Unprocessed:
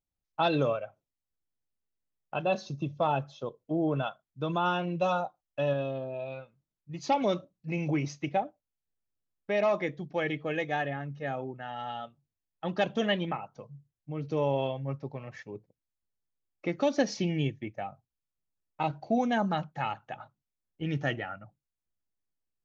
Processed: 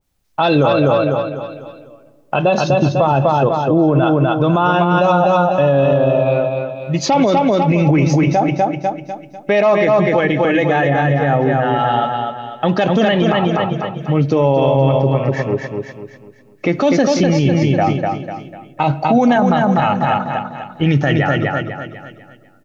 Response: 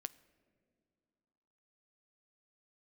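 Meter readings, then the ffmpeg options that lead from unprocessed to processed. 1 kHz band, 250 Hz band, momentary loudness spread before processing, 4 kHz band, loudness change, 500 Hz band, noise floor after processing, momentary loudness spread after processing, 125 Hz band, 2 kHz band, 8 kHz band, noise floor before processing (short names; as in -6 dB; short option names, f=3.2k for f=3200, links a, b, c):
+17.0 dB, +18.0 dB, 14 LU, +13.5 dB, +16.5 dB, +17.0 dB, -47 dBFS, 10 LU, +19.5 dB, +15.5 dB, n/a, under -85 dBFS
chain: -filter_complex "[0:a]aecho=1:1:248|496|744|992|1240:0.596|0.226|0.086|0.0327|0.0124,asplit=2[a][b];[1:a]atrim=start_sample=2205[c];[b][c]afir=irnorm=-1:irlink=0,volume=10.5dB[d];[a][d]amix=inputs=2:normalize=0,alimiter=level_in=15.5dB:limit=-1dB:release=50:level=0:latency=1,adynamicequalizer=threshold=0.0447:dfrequency=1900:dqfactor=0.7:tfrequency=1900:tqfactor=0.7:attack=5:release=100:ratio=0.375:range=3:mode=cutabove:tftype=highshelf,volume=-4dB"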